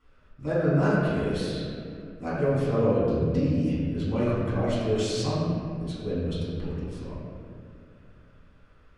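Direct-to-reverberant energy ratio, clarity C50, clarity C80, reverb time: -11.0 dB, -3.0 dB, -0.5 dB, 2.4 s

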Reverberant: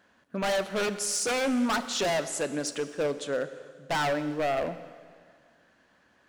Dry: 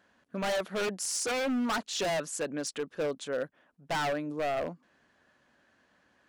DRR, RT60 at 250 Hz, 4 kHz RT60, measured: 11.0 dB, 1.8 s, 1.8 s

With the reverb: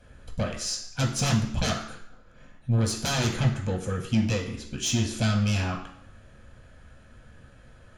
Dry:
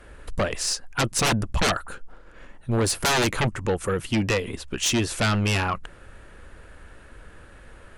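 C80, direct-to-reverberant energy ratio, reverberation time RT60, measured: 10.5 dB, -0.5 dB, 0.70 s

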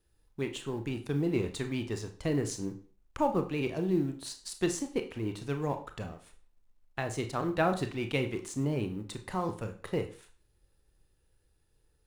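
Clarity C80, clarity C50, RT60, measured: 16.5 dB, 12.0 dB, 0.40 s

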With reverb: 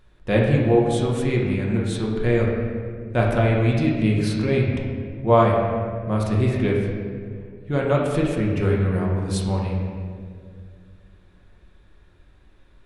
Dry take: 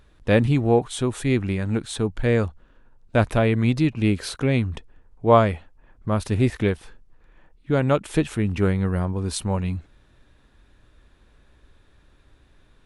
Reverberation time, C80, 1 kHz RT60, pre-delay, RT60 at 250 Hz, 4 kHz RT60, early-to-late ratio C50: 2.1 s, 3.5 dB, 1.7 s, 5 ms, 2.7 s, 1.2 s, 1.5 dB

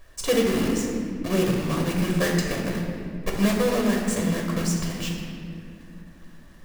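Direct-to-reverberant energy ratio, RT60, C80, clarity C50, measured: -1.0 dB, 2.4 s, 4.0 dB, 2.0 dB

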